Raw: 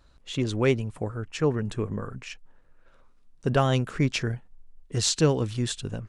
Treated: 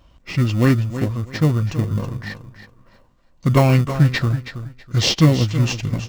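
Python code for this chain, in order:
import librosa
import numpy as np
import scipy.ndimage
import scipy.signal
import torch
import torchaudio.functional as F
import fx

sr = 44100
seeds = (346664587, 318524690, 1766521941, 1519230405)

p1 = fx.notch_comb(x, sr, f0_hz=430.0)
p2 = fx.echo_feedback(p1, sr, ms=324, feedback_pct=23, wet_db=-11.5)
p3 = fx.sample_hold(p2, sr, seeds[0], rate_hz=1600.0, jitter_pct=0)
p4 = p2 + F.gain(torch.from_numpy(p3), -9.0).numpy()
p5 = fx.formant_shift(p4, sr, semitones=-5)
y = F.gain(torch.from_numpy(p5), 7.5).numpy()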